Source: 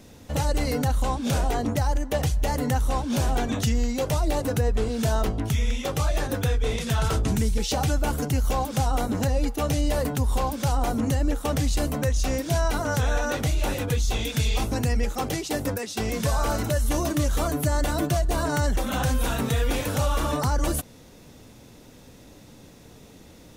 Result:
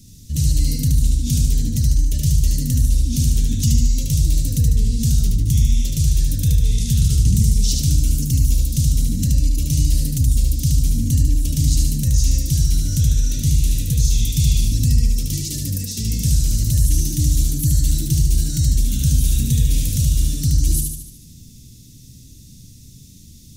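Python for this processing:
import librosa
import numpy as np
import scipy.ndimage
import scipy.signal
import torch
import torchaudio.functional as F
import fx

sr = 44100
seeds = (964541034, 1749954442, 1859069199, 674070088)

p1 = scipy.signal.sosfilt(scipy.signal.cheby1(2, 1.0, [140.0, 5600.0], 'bandstop', fs=sr, output='sos'), x)
p2 = p1 + fx.echo_feedback(p1, sr, ms=74, feedback_pct=53, wet_db=-3, dry=0)
y = p2 * librosa.db_to_amplitude(7.5)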